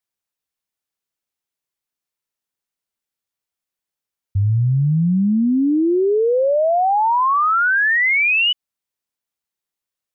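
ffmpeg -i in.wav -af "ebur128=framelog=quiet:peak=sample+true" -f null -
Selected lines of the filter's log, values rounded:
Integrated loudness:
  I:         -16.2 LUFS
  Threshold: -26.3 LUFS
Loudness range:
  LRA:         9.4 LU
  Threshold: -37.8 LUFS
  LRA low:   -25.0 LUFS
  LRA high:  -15.6 LUFS
Sample peak:
  Peak:      -13.0 dBFS
True peak:
  Peak:      -13.0 dBFS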